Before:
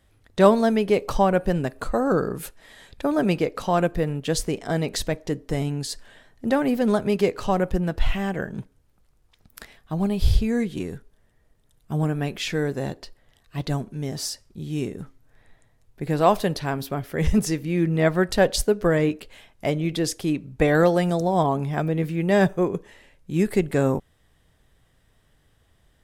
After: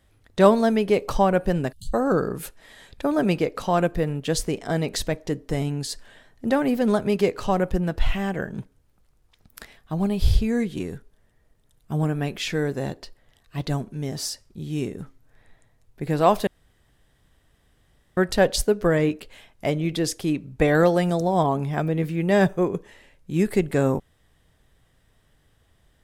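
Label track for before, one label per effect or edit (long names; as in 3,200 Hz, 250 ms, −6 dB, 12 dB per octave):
1.720000	1.930000	time-frequency box erased 200–2,800 Hz
16.470000	18.170000	fill with room tone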